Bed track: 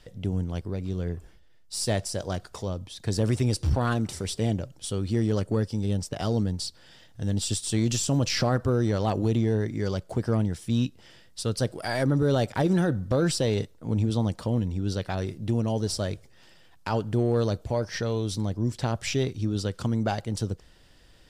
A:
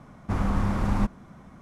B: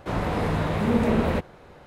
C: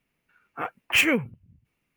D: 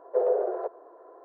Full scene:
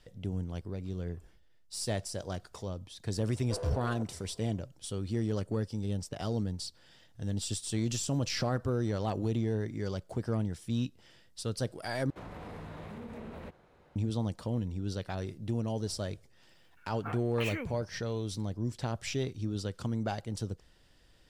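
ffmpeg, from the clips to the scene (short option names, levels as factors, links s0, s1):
-filter_complex "[0:a]volume=0.447[s0];[4:a]aeval=exprs='clip(val(0),-1,0.0501)':c=same[s1];[2:a]acompressor=threshold=0.0501:ratio=6:attack=3.2:release=140:knee=1:detection=peak[s2];[3:a]acompressor=threshold=0.0224:ratio=12:attack=1.8:release=138:knee=1:detection=peak[s3];[s0]asplit=2[s4][s5];[s4]atrim=end=12.104[s6];[s2]atrim=end=1.86,asetpts=PTS-STARTPTS,volume=0.2[s7];[s5]atrim=start=13.956[s8];[s1]atrim=end=1.24,asetpts=PTS-STARTPTS,volume=0.211,afade=t=in:d=0.004:c=hsin,afade=t=out:st=1.236:d=0.004:c=hsin,adelay=3360[s9];[s3]atrim=end=1.96,asetpts=PTS-STARTPTS,volume=0.944,afade=t=in:d=0.004:c=hsin,afade=t=out:st=1.956:d=0.004:c=hsin,adelay=16480[s10];[s6][s7]acrossfade=d=0.004:c1=hsin:c2=hsin[s11];[s11][s8]acrossfade=d=0.004:c1=hsin:c2=hsin[s12];[s12][s9][s10]amix=inputs=3:normalize=0"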